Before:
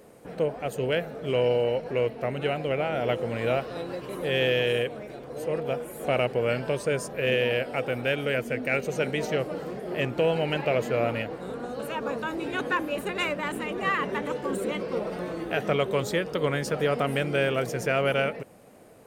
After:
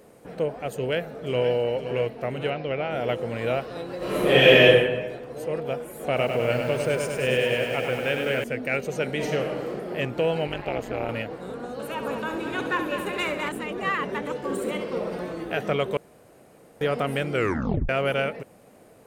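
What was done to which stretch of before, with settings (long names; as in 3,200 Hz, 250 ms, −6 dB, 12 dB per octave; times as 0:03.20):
0:00.74–0:01.55: delay throw 520 ms, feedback 50%, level −10.5 dB
0:02.50–0:02.91: elliptic low-pass filter 5,800 Hz
0:03.97–0:04.63: thrown reverb, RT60 1.2 s, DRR −11.5 dB
0:06.06–0:08.44: feedback echo at a low word length 101 ms, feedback 80%, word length 8 bits, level −5.5 dB
0:09.06–0:09.78: thrown reverb, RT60 1.4 s, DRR 2.5 dB
0:10.47–0:11.09: amplitude modulation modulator 200 Hz, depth 90%
0:11.73–0:13.49: echo machine with several playback heads 68 ms, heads first and third, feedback 61%, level −9 dB
0:14.39–0:15.26: flutter between parallel walls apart 11.5 metres, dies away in 0.55 s
0:15.97–0:16.81: fill with room tone
0:17.33: tape stop 0.56 s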